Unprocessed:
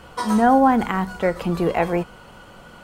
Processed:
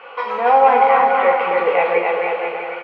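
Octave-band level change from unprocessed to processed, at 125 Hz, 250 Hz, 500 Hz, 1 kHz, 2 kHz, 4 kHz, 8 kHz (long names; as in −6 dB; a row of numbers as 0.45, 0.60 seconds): below −15 dB, −14.0 dB, +7.0 dB, +7.0 dB, +8.0 dB, +3.0 dB, below −20 dB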